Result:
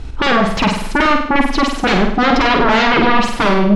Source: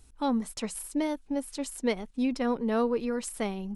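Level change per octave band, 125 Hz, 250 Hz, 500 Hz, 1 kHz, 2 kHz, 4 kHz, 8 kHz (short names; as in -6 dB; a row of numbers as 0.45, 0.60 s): n/a, +13.5 dB, +13.5 dB, +22.5 dB, +26.5 dB, +23.0 dB, +6.0 dB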